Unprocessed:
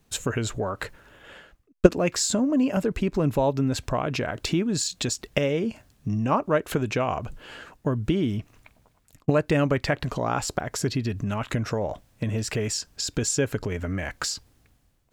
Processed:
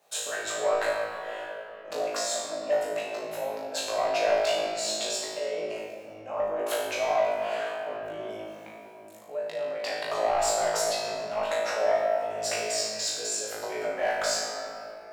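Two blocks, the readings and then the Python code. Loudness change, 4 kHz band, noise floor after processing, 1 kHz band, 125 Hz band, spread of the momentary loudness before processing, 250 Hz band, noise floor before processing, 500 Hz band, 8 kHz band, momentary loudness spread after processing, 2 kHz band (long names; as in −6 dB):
−3.0 dB, +0.5 dB, −45 dBFS, +1.0 dB, −27.0 dB, 9 LU, −19.5 dB, −64 dBFS, 0.0 dB, −1.0 dB, 13 LU, −0.5 dB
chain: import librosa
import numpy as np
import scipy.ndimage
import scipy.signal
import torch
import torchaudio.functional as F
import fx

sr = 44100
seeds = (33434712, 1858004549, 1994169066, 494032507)

y = fx.octave_divider(x, sr, octaves=1, level_db=-4.0)
y = fx.over_compress(y, sr, threshold_db=-30.0, ratio=-1.0)
y = fx.highpass_res(y, sr, hz=630.0, q=4.9)
y = 10.0 ** (-15.0 / 20.0) * np.tanh(y / 10.0 ** (-15.0 / 20.0))
y = fx.room_flutter(y, sr, wall_m=3.2, rt60_s=0.62)
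y = fx.room_shoebox(y, sr, seeds[0], volume_m3=160.0, walls='hard', distance_m=0.4)
y = y * librosa.db_to_amplitude(-7.0)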